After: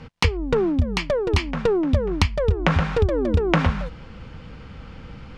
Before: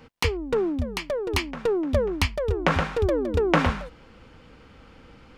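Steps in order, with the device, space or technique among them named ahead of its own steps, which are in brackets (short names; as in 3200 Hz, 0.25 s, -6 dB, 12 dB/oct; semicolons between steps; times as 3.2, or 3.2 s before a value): jukebox (LPF 6700 Hz 12 dB/oct; resonant low shelf 220 Hz +6 dB, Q 1.5; compressor 5:1, threshold -22 dBFS, peak gain reduction 9.5 dB); gain +6.5 dB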